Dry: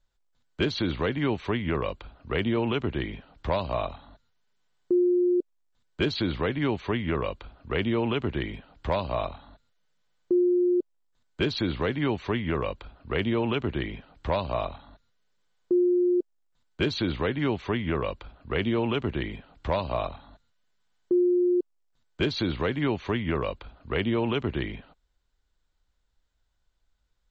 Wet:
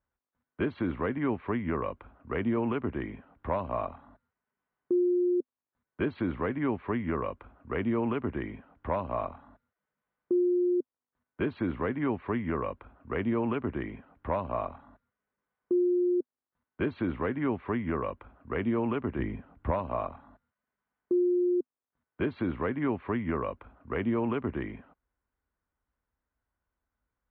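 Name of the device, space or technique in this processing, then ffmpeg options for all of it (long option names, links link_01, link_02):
bass cabinet: -filter_complex "[0:a]asettb=1/sr,asplit=3[link_01][link_02][link_03];[link_01]atrim=end=19.194[link_04];[link_02]atrim=start=19.19:end=19.71,asetpts=PTS-STARTPTS,afade=type=in:duration=0.004:curve=qsin,afade=type=out:start_time=0.516:duration=0.004:curve=qsin,lowshelf=frequency=250:gain=8.5[link_05];[link_03]atrim=start=19.706[link_06];[link_04][link_05]acrossfade=duration=0.004:curve1=hsin:curve2=qsin[link_07];[link_07][link_06]acrossfade=duration=0.004:curve1=qsin:curve2=hsin,highpass=67,equalizer=frequency=140:width_type=q:width=4:gain=-4,equalizer=frequency=250:width_type=q:width=4:gain=5,equalizer=frequency=1100:width_type=q:width=4:gain=4,lowpass=frequency=2100:width=0.5412,lowpass=frequency=2100:width=1.3066,volume=-4dB"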